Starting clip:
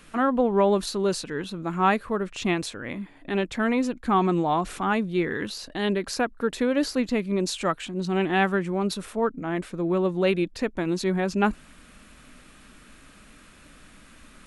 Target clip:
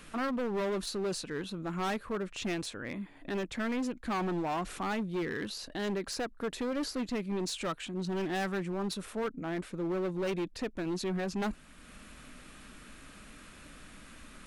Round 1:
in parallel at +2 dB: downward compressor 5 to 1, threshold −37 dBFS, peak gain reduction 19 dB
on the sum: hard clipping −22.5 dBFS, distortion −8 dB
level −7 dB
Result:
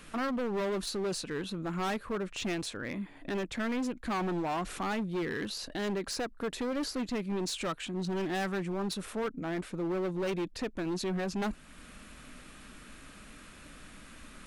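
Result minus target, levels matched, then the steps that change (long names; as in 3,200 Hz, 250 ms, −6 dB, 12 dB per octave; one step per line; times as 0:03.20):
downward compressor: peak gain reduction −7.5 dB
change: downward compressor 5 to 1, threshold −46.5 dBFS, peak gain reduction 26.5 dB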